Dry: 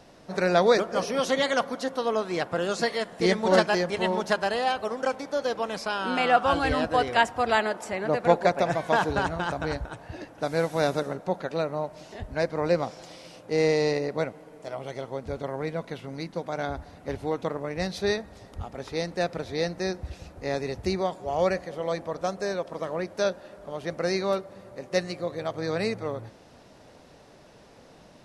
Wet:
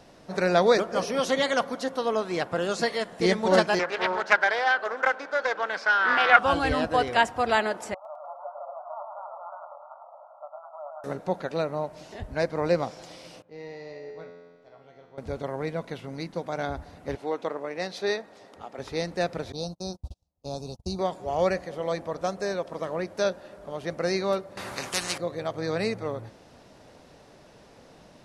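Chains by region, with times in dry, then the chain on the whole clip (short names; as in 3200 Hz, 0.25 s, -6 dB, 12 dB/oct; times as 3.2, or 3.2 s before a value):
3.79–6.39 BPF 390–4600 Hz + bell 1500 Hz +14 dB 0.41 oct + Doppler distortion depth 0.22 ms
7.94–11.04 compressor 2.5:1, threshold -39 dBFS + brick-wall FIR band-pass 550–1400 Hz + warbling echo 0.106 s, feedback 51%, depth 116 cents, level -4 dB
13.42–15.18 air absorption 150 m + resonator 86 Hz, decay 1.6 s, mix 90%
17.15–18.79 HPF 310 Hz + high shelf 9300 Hz -11 dB
19.52–20.99 gate -36 dBFS, range -35 dB + Butterworth band-stop 1900 Hz, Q 0.69 + bell 400 Hz -9.5 dB 1.3 oct
24.57–25.18 HPF 170 Hz 6 dB/oct + spectral compressor 4:1
whole clip: dry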